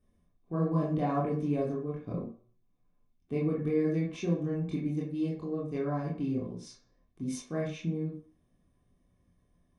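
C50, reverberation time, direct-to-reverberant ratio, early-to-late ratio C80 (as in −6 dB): 4.0 dB, 0.45 s, −6.0 dB, 9.5 dB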